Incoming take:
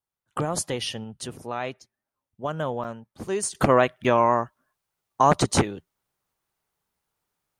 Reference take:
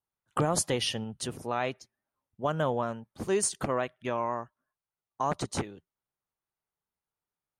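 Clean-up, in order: interpolate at 2.84/4.04, 5.5 ms; gain 0 dB, from 3.55 s -11.5 dB

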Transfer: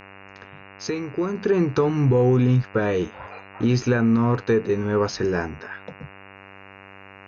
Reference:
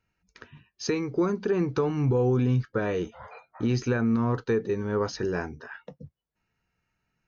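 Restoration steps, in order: de-hum 97.5 Hz, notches 29; gain 0 dB, from 1.35 s -5.5 dB

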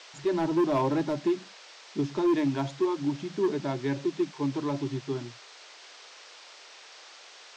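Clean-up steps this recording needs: clip repair -20 dBFS; noise print and reduce 23 dB

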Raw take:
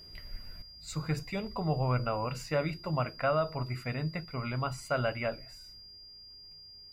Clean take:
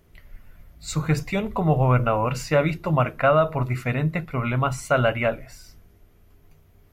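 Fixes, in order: notch 4800 Hz, Q 30; gain 0 dB, from 0.62 s +10.5 dB

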